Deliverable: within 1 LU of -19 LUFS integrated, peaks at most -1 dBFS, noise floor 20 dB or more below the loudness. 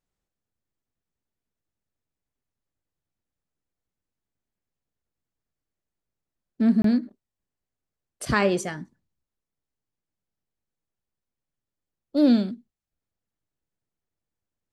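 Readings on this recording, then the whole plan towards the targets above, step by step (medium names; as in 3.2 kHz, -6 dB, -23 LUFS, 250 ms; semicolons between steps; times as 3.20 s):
dropouts 1; longest dropout 23 ms; loudness -23.0 LUFS; peak level -8.0 dBFS; loudness target -19.0 LUFS
-> interpolate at 6.82 s, 23 ms; trim +4 dB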